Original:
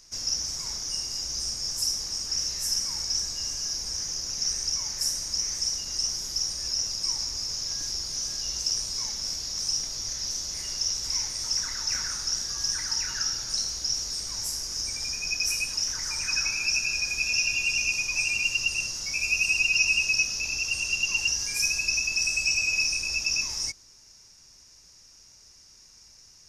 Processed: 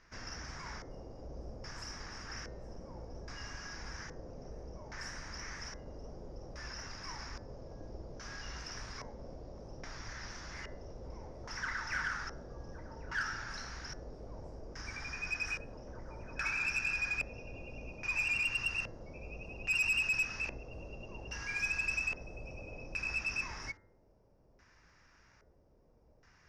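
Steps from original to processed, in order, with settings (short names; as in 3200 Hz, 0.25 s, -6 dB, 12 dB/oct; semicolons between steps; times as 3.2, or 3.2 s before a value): LFO low-pass square 0.61 Hz 560–1700 Hz; tube stage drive 26 dB, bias 0.2; de-hum 96.21 Hz, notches 22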